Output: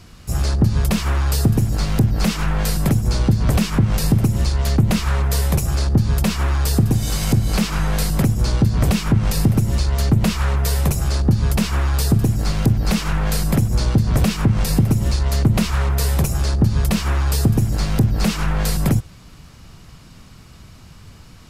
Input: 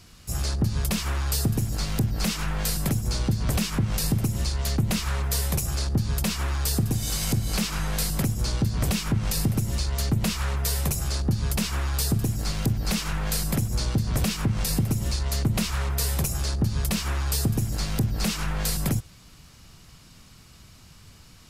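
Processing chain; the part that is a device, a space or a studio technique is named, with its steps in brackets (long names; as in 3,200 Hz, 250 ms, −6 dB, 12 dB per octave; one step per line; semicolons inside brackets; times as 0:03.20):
behind a face mask (high-shelf EQ 2,500 Hz −8 dB)
level +8.5 dB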